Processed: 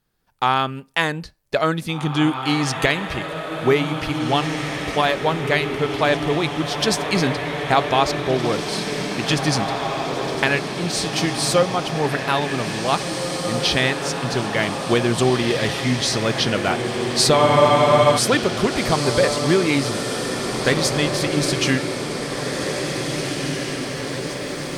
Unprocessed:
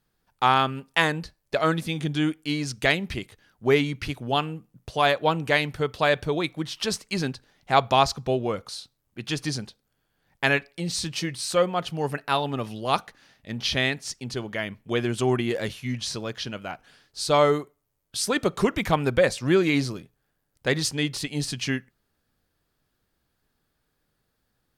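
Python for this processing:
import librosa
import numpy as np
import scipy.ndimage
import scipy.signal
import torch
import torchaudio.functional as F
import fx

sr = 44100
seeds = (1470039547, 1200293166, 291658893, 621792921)

y = fx.recorder_agc(x, sr, target_db=-8.5, rise_db_per_s=6.8, max_gain_db=30)
y = fx.echo_diffused(y, sr, ms=1987, feedback_pct=67, wet_db=-5.0)
y = fx.spec_freeze(y, sr, seeds[0], at_s=17.4, hold_s=0.77)
y = y * 10.0 ** (1.0 / 20.0)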